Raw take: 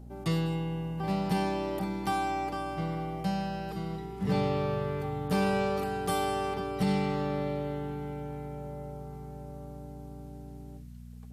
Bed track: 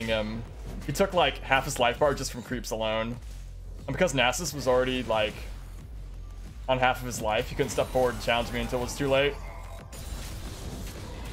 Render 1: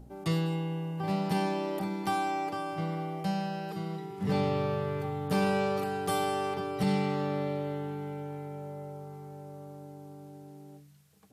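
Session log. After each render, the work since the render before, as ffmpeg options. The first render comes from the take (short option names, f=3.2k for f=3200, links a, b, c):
-af "bandreject=f=60:t=h:w=4,bandreject=f=120:t=h:w=4,bandreject=f=180:t=h:w=4,bandreject=f=240:t=h:w=4"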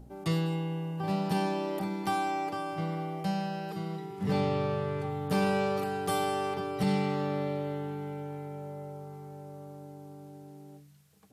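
-filter_complex "[0:a]asettb=1/sr,asplit=3[a][b][c];[a]atrim=end=0.964[d];[b]atrim=start=0.96:end=1.7,asetpts=PTS-STARTPTS,afade=t=in:d=0.004:c=qsin,afade=t=out:st=0.736:d=0.004:c=qsin,bandreject=f=2.1k:w=11[e];[c]atrim=start=1.696[f];[d][e]acrossfade=d=0.004:c1=hsin:c2=qsin[g];[g][f]acrossfade=d=0.004:c1=qsin:c2=hsin,asettb=1/sr,asplit=3[h][i][j];[h]atrim=end=4.414[k];[i]atrim=start=4.41:end=5.1,asetpts=PTS-STARTPTS,afade=t=in:d=0.004:c=qsin,afade=t=out:st=0.686:d=0.004:c=qsin,lowpass=f=11k:w=0.5412,lowpass=f=11k:w=1.3066[l];[j]atrim=start=5.096[m];[k][l]acrossfade=d=0.004:c1=hsin:c2=qsin[n];[n][m]acrossfade=d=0.004:c1=qsin:c2=hsin"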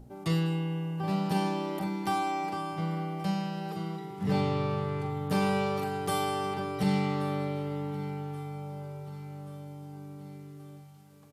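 -filter_complex "[0:a]asplit=2[a][b];[b]adelay=42,volume=-9.5dB[c];[a][c]amix=inputs=2:normalize=0,aecho=1:1:1129|2258|3387|4516|5645:0.106|0.0614|0.0356|0.0207|0.012"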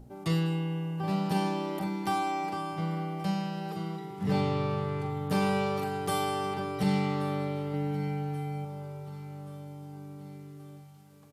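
-filter_complex "[0:a]asettb=1/sr,asplit=3[a][b][c];[a]atrim=end=7.734[d];[b]atrim=start=7.73:end=8.65,asetpts=PTS-STARTPTS,afade=t=in:d=0.004:c=qsin,afade=t=out:st=0.916:d=0.004:c=qsin,aecho=1:1:6.4:0.65,atrim=end_sample=40572[e];[c]atrim=start=8.646[f];[d][e]acrossfade=d=0.004:c1=hsin:c2=qsin[g];[g][f]acrossfade=d=0.004:c1=qsin:c2=hsin"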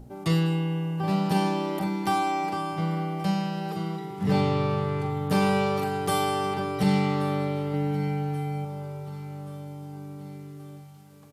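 -af "volume=4.5dB"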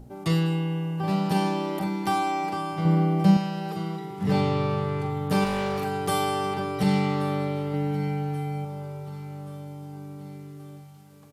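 -filter_complex "[0:a]asettb=1/sr,asplit=3[a][b][c];[a]atrim=end=2.854[d];[b]atrim=start=2.85:end=3.37,asetpts=PTS-STARTPTS,afade=t=in:d=0.004:c=qsin,afade=t=out:st=0.516:d=0.004:c=qsin,equalizer=f=220:w=0.44:g=9[e];[c]atrim=start=3.366[f];[d][e]acrossfade=d=0.004:c1=hsin:c2=qsin[g];[g][f]acrossfade=d=0.004:c1=qsin:c2=hsin,asettb=1/sr,asplit=3[h][i][j];[h]atrim=end=5.444[k];[i]atrim=start=5.44:end=5.86,asetpts=PTS-STARTPTS,afade=t=in:d=0.004:c=qsin,afade=t=out:st=0.416:d=0.004:c=qsin,volume=24dB,asoftclip=hard,volume=-24dB[l];[j]atrim=start=5.856[m];[k][l]acrossfade=d=0.004:c1=hsin:c2=qsin[n];[n][m]acrossfade=d=0.004:c1=qsin:c2=hsin"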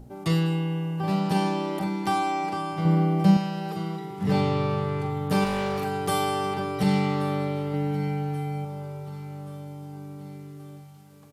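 -filter_complex "[0:a]asettb=1/sr,asplit=3[a][b][c];[a]atrim=end=1.194[d];[b]atrim=start=1.19:end=2.77,asetpts=PTS-STARTPTS,afade=t=in:d=0.004:c=qsin,afade=t=out:st=1.576:d=0.004:c=qsin,lowpass=12k[e];[c]atrim=start=2.766[f];[d][e]acrossfade=d=0.004:c1=hsin:c2=qsin[g];[g][f]acrossfade=d=0.004:c1=qsin:c2=hsin"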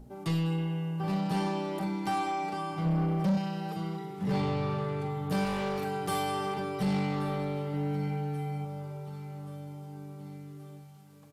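-af "flanger=delay=4.6:depth=1.8:regen=-58:speed=1.2:shape=sinusoidal,asoftclip=type=tanh:threshold=-23dB"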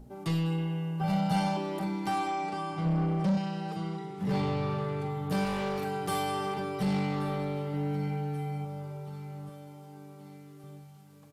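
-filter_complex "[0:a]asettb=1/sr,asplit=3[a][b][c];[a]atrim=end=1.014[d];[b]atrim=start=1.01:end=1.57,asetpts=PTS-STARTPTS,afade=t=in:d=0.004:c=qsin,afade=t=out:st=0.556:d=0.004:c=qsin,aecho=1:1:1.4:0.88,atrim=end_sample=24696[e];[c]atrim=start=1.566[f];[d][e]acrossfade=d=0.004:c1=hsin:c2=qsin[g];[g][f]acrossfade=d=0.004:c1=qsin:c2=hsin,asettb=1/sr,asplit=3[h][i][j];[h]atrim=end=2.284[k];[i]atrim=start=2.28:end=4.19,asetpts=PTS-STARTPTS,afade=t=in:d=0.004:c=qsin,afade=t=out:st=1.906:d=0.004:c=qsin,lowpass=f=10k:w=0.5412,lowpass=f=10k:w=1.3066[l];[j]atrim=start=4.186[m];[k][l]acrossfade=d=0.004:c1=hsin:c2=qsin[n];[n][m]acrossfade=d=0.004:c1=qsin:c2=hsin,asettb=1/sr,asplit=3[o][p][q];[o]atrim=end=9.494[r];[p]atrim=start=9.49:end=10.64,asetpts=PTS-STARTPTS,afade=t=in:d=0.004:c=qsin,afade=t=out:st=1.146:d=0.004:c=qsin,highpass=f=280:p=1[s];[q]atrim=start=10.636[t];[r][s]acrossfade=d=0.004:c1=hsin:c2=qsin[u];[u][t]acrossfade=d=0.004:c1=qsin:c2=hsin"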